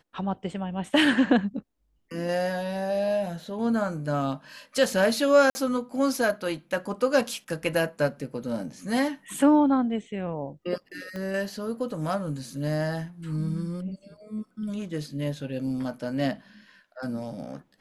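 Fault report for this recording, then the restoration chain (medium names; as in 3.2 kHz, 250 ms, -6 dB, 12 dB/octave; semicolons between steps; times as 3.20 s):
5.50–5.55 s: dropout 50 ms
11.16 s: pop -23 dBFS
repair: de-click; interpolate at 5.50 s, 50 ms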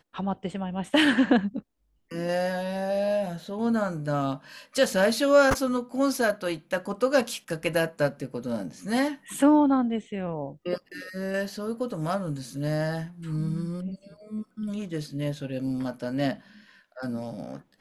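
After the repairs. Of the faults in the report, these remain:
11.16 s: pop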